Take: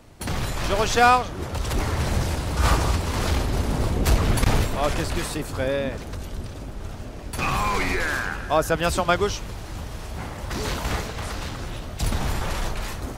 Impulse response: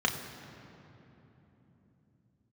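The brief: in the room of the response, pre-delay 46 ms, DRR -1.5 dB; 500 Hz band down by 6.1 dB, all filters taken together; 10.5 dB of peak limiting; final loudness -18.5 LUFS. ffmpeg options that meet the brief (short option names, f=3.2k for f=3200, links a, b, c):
-filter_complex "[0:a]equalizer=f=500:t=o:g=-8,alimiter=limit=-16.5dB:level=0:latency=1,asplit=2[a][b];[1:a]atrim=start_sample=2205,adelay=46[c];[b][c]afir=irnorm=-1:irlink=0,volume=-8.5dB[d];[a][d]amix=inputs=2:normalize=0,volume=6dB"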